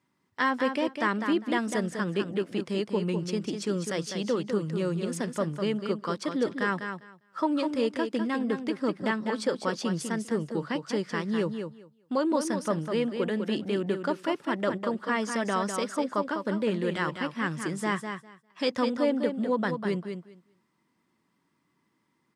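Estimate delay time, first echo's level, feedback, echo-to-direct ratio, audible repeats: 201 ms, -7.0 dB, 16%, -7.0 dB, 2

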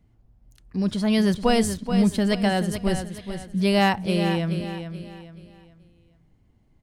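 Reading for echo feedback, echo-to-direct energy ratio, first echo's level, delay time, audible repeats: 34%, -8.5 dB, -9.0 dB, 429 ms, 3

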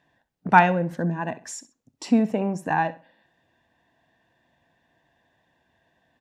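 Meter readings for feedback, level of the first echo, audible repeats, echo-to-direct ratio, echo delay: 26%, -17.0 dB, 2, -16.5 dB, 65 ms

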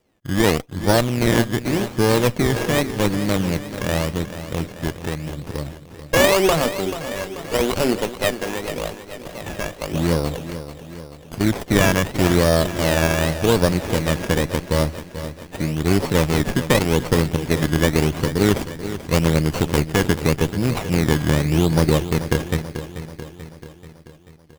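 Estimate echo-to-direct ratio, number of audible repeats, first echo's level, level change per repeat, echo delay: -10.5 dB, 5, -12.0 dB, -5.0 dB, 436 ms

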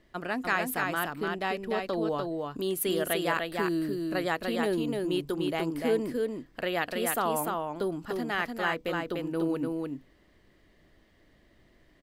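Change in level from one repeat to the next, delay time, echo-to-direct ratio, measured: no regular repeats, 296 ms, -3.5 dB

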